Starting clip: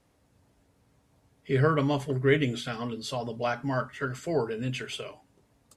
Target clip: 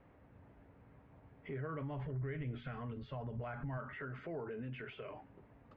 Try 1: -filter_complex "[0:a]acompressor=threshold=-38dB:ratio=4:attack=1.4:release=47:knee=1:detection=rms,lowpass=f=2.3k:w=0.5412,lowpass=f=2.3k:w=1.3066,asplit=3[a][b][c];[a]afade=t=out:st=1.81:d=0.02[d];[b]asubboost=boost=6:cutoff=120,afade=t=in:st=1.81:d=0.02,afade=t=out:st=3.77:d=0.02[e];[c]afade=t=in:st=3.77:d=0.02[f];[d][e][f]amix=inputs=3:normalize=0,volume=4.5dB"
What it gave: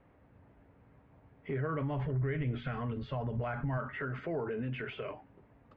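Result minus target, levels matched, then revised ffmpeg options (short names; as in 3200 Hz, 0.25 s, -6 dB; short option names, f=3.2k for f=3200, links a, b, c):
compressor: peak gain reduction -7.5 dB
-filter_complex "[0:a]acompressor=threshold=-48dB:ratio=4:attack=1.4:release=47:knee=1:detection=rms,lowpass=f=2.3k:w=0.5412,lowpass=f=2.3k:w=1.3066,asplit=3[a][b][c];[a]afade=t=out:st=1.81:d=0.02[d];[b]asubboost=boost=6:cutoff=120,afade=t=in:st=1.81:d=0.02,afade=t=out:st=3.77:d=0.02[e];[c]afade=t=in:st=3.77:d=0.02[f];[d][e][f]amix=inputs=3:normalize=0,volume=4.5dB"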